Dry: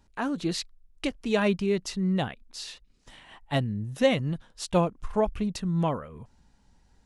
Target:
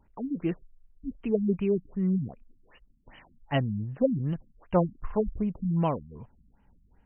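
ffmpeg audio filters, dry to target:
ffmpeg -i in.wav -af "afftfilt=real='re*lt(b*sr/1024,260*pow(3200/260,0.5+0.5*sin(2*PI*2.6*pts/sr)))':imag='im*lt(b*sr/1024,260*pow(3200/260,0.5+0.5*sin(2*PI*2.6*pts/sr)))':win_size=1024:overlap=0.75" out.wav

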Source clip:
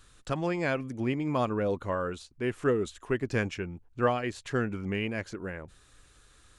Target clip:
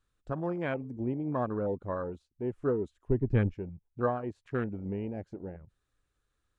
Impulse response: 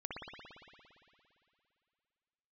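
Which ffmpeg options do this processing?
-filter_complex "[0:a]asettb=1/sr,asplit=3[link_01][link_02][link_03];[link_01]atrim=end=3.094[link_04];[link_02]atrim=start=3.09:end=3.54,asetpts=PTS-STARTPTS,afade=type=in:duration=0.004:curve=qsin,afade=type=out:start_time=0.446:duration=0.004:curve=qsin,aemphasis=mode=reproduction:type=bsi[link_05];[link_03]atrim=start=3.536[link_06];[link_04][link_05]acrossfade=duration=0.004:curve1=hsin:curve2=qsin[link_07];[link_07][link_06]acrossfade=duration=0.004:curve1=qsin:curve2=hsin,afwtdn=0.0251,highshelf=frequency=2500:gain=-8.5,volume=-2.5dB"

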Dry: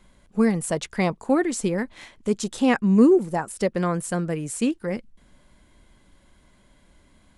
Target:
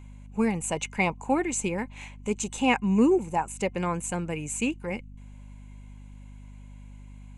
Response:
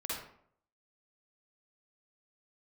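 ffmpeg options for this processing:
-af "aeval=exprs='val(0)+0.0126*(sin(2*PI*50*n/s)+sin(2*PI*2*50*n/s)/2+sin(2*PI*3*50*n/s)/3+sin(2*PI*4*50*n/s)/4+sin(2*PI*5*50*n/s)/5)':channel_layout=same,superequalizer=9b=2.51:12b=3.55:14b=0.631:15b=2.51,volume=-5.5dB"

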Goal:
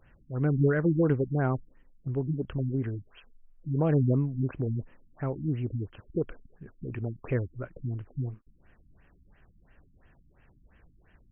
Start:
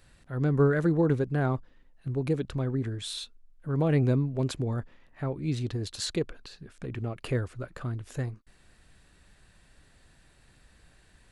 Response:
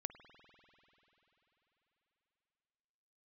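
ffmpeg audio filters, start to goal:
-af "afftfilt=real='re*lt(b*sr/1024,290*pow(3300/290,0.5+0.5*sin(2*PI*2.9*pts/sr)))':imag='im*lt(b*sr/1024,290*pow(3300/290,0.5+0.5*sin(2*PI*2.9*pts/sr)))':win_size=1024:overlap=0.75"

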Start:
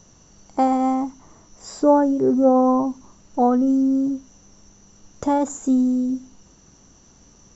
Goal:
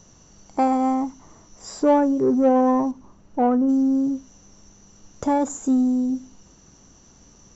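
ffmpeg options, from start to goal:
ffmpeg -i in.wav -filter_complex "[0:a]asettb=1/sr,asplit=3[link_01][link_02][link_03];[link_01]atrim=end=2.914[link_04];[link_02]atrim=start=2.91:end=3.69,asetpts=PTS-STARTPTS,afade=type=in:duration=0.004:curve=qsin,afade=type=out:start_time=0.776:duration=0.004:curve=qsin,lowpass=frequency=1500:poles=1[link_05];[link_03]atrim=start=3.686[link_06];[link_04][link_05]acrossfade=duration=0.004:curve1=hsin:curve2=qsin[link_07];[link_07][link_06]acrossfade=duration=0.004:curve1=qsin:curve2=hsin,asplit=2[link_08][link_09];[link_09]asoftclip=type=tanh:threshold=-16.5dB,volume=-3dB[link_10];[link_08][link_10]amix=inputs=2:normalize=0,volume=-4.5dB" out.wav

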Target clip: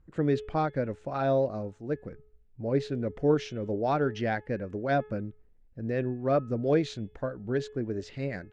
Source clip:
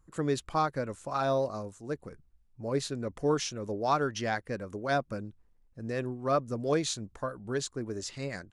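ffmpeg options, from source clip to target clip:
ffmpeg -i in.wav -af "lowpass=2300,equalizer=frequency=1100:width_type=o:width=0.69:gain=-11.5,bandreject=frequency=426.2:width_type=h:width=4,bandreject=frequency=852.4:width_type=h:width=4,bandreject=frequency=1278.6:width_type=h:width=4,bandreject=frequency=1704.8:width_type=h:width=4,bandreject=frequency=2131:width_type=h:width=4,bandreject=frequency=2557.2:width_type=h:width=4,bandreject=frequency=2983.4:width_type=h:width=4,bandreject=frequency=3409.6:width_type=h:width=4,volume=4.5dB" out.wav

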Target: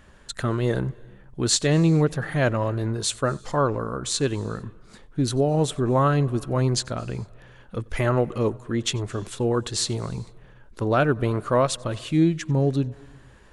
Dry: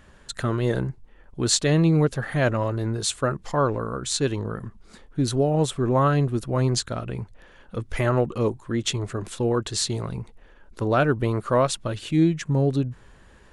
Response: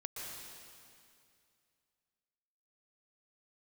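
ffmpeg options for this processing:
-filter_complex "[0:a]asplit=2[link_01][link_02];[1:a]atrim=start_sample=2205,afade=type=out:start_time=0.42:duration=0.01,atrim=end_sample=18963,adelay=92[link_03];[link_02][link_03]afir=irnorm=-1:irlink=0,volume=-20.5dB[link_04];[link_01][link_04]amix=inputs=2:normalize=0"

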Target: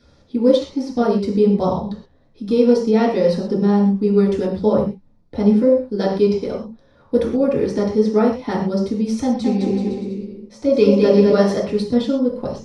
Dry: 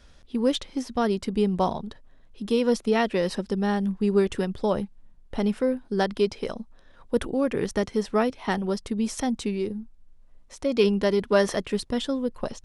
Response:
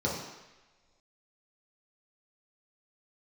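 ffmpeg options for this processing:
-filter_complex "[0:a]flanger=delay=0.7:depth=9.6:regen=66:speed=1.2:shape=sinusoidal,asettb=1/sr,asplit=3[link_01][link_02][link_03];[link_01]atrim=end=9.234[link_04];[link_02]atrim=start=9.23:end=11.32,asetpts=PTS-STARTPTS,afade=type=in:duration=0.004:curve=qsin,afade=type=out:start_time=2.086:duration=0.004:curve=qsin,aecho=1:1:210|378|512.4|619.9|705.9:0.631|0.398|0.251|0.158|0.1,atrim=end_sample=92169[link_05];[link_03]atrim=start=11.316[link_06];[link_04][link_05]acrossfade=duration=0.004:curve1=hsin:curve2=qsin[link_07];[link_07][link_06]acrossfade=duration=0.004:curve1=qsin:curve2=hsin[link_08];[1:a]atrim=start_sample=2205,atrim=end_sample=6174[link_09];[link_08][link_09]afir=irnorm=-1:irlink=0,volume=-1.5dB"

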